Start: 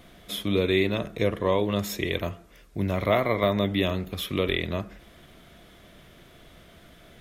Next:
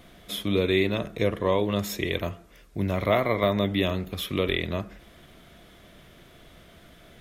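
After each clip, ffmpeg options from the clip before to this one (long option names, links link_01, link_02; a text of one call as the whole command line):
ffmpeg -i in.wav -af anull out.wav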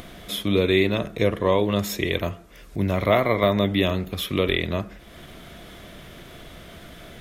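ffmpeg -i in.wav -af "acompressor=mode=upward:threshold=-38dB:ratio=2.5,volume=3.5dB" out.wav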